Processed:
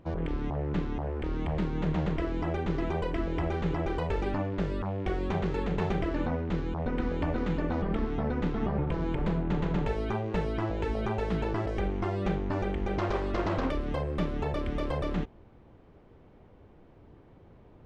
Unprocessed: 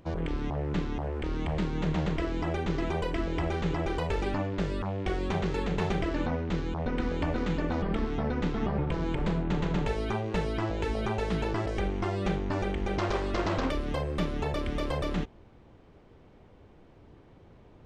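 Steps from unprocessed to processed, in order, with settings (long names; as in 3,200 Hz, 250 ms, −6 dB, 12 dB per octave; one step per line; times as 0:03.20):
high-shelf EQ 3,300 Hz −10 dB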